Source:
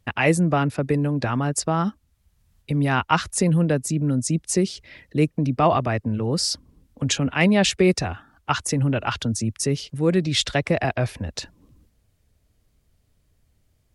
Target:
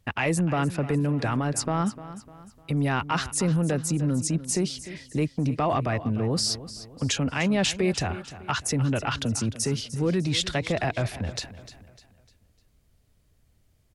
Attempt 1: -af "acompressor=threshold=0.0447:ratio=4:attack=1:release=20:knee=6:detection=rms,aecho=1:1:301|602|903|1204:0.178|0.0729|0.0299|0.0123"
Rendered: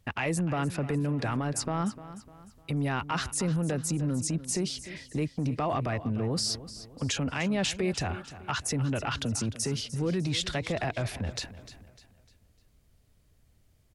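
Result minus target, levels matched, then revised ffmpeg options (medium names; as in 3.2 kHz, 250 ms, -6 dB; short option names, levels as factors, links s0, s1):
compression: peak gain reduction +5 dB
-af "acompressor=threshold=0.0944:ratio=4:attack=1:release=20:knee=6:detection=rms,aecho=1:1:301|602|903|1204:0.178|0.0729|0.0299|0.0123"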